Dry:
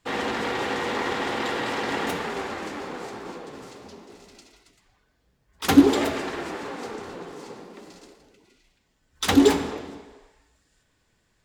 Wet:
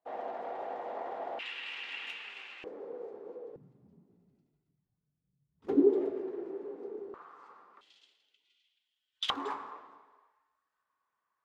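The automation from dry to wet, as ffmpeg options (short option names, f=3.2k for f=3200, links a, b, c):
-af "asetnsamples=n=441:p=0,asendcmd='1.39 bandpass f 2700;2.64 bandpass f 470;3.56 bandpass f 150;5.67 bandpass f 390;7.14 bandpass f 1200;7.81 bandpass f 3200;9.3 bandpass f 1100',bandpass=f=670:t=q:w=6.4:csg=0"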